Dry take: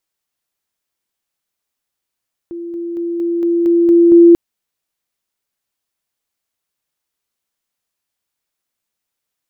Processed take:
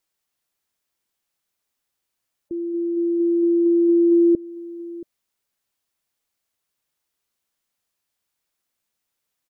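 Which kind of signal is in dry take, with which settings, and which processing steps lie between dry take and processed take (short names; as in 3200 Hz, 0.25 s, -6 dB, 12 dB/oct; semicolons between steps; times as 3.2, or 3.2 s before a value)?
level ladder 341 Hz -23.5 dBFS, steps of 3 dB, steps 8, 0.23 s 0.00 s
spectral gate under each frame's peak -25 dB strong; compressor 3:1, threshold -17 dBFS; echo 0.678 s -18.5 dB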